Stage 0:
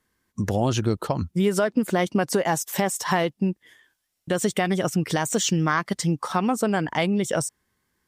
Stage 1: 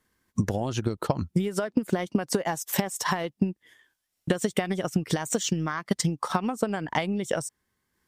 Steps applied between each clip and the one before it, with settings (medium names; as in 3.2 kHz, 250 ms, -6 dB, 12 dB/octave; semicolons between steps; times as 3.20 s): compression 6:1, threshold -26 dBFS, peak gain reduction 9.5 dB; transient shaper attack +7 dB, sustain -4 dB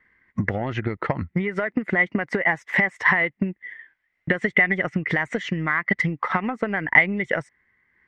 in parallel at -3.5 dB: saturation -24.5 dBFS, distortion -8 dB; on the sum: resonant low-pass 2 kHz, resonance Q 12; trim -2 dB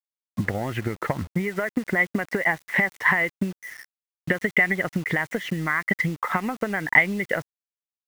bit crusher 7-bit; trim -1.5 dB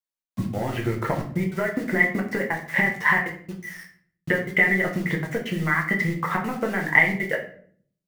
trance gate "xxx.xx.xxxxxx" 198 bpm -60 dB; simulated room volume 64 m³, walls mixed, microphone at 0.72 m; trim -2 dB